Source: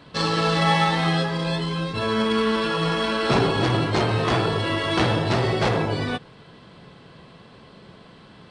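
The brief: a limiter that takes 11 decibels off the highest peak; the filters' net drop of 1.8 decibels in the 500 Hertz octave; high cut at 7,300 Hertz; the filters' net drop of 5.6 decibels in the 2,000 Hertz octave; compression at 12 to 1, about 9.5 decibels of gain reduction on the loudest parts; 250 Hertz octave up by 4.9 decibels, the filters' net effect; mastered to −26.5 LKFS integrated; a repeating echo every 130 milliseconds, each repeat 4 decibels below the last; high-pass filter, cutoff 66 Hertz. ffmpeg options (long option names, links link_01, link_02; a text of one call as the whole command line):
ffmpeg -i in.wav -af "highpass=66,lowpass=7300,equalizer=frequency=250:width_type=o:gain=8.5,equalizer=frequency=500:width_type=o:gain=-5,equalizer=frequency=2000:width_type=o:gain=-7,acompressor=threshold=-23dB:ratio=12,alimiter=limit=-23.5dB:level=0:latency=1,aecho=1:1:130|260|390|520|650|780|910|1040|1170:0.631|0.398|0.25|0.158|0.0994|0.0626|0.0394|0.0249|0.0157,volume=4.5dB" out.wav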